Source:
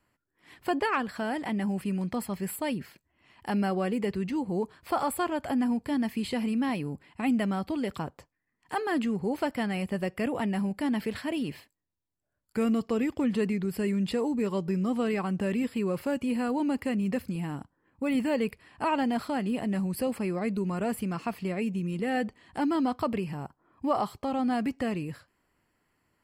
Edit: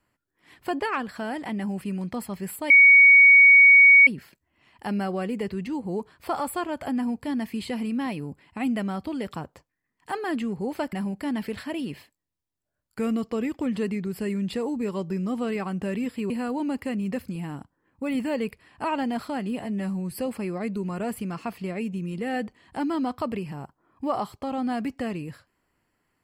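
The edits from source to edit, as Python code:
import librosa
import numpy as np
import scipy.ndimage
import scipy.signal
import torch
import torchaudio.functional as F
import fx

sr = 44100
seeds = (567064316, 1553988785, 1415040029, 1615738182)

y = fx.edit(x, sr, fx.insert_tone(at_s=2.7, length_s=1.37, hz=2240.0, db=-9.5),
    fx.cut(start_s=9.56, length_s=0.95),
    fx.cut(start_s=15.88, length_s=0.42),
    fx.stretch_span(start_s=19.6, length_s=0.38, factor=1.5), tone=tone)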